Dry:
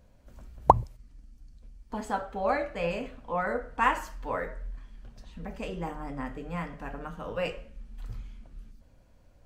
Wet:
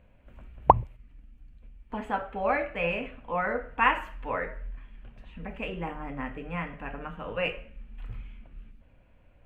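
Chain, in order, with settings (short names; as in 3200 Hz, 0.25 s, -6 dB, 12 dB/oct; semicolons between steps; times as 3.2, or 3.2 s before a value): resonant high shelf 3700 Hz -12 dB, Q 3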